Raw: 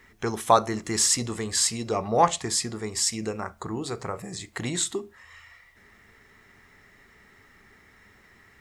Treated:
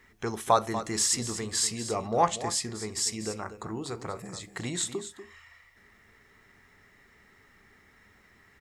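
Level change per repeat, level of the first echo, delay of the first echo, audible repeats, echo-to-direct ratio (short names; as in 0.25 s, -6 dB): no steady repeat, -12.0 dB, 0.241 s, 1, -12.0 dB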